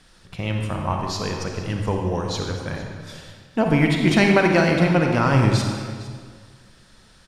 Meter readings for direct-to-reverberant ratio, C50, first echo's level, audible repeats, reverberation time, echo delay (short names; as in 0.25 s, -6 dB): 1.5 dB, 2.5 dB, -17.5 dB, 1, 1.8 s, 0.457 s